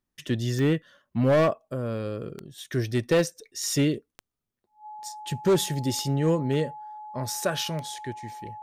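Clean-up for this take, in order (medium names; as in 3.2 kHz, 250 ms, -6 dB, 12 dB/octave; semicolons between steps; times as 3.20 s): clip repair -16 dBFS; de-click; band-stop 850 Hz, Q 30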